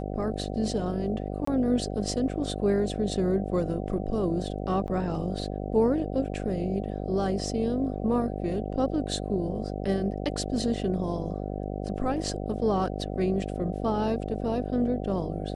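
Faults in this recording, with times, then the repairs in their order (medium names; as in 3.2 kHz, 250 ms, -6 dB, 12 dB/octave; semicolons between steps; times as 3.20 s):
buzz 50 Hz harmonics 15 -33 dBFS
1.45–1.47 s: dropout 24 ms
4.87–4.88 s: dropout 9.9 ms
10.13 s: dropout 2.5 ms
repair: de-hum 50 Hz, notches 15; interpolate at 1.45 s, 24 ms; interpolate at 4.87 s, 9.9 ms; interpolate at 10.13 s, 2.5 ms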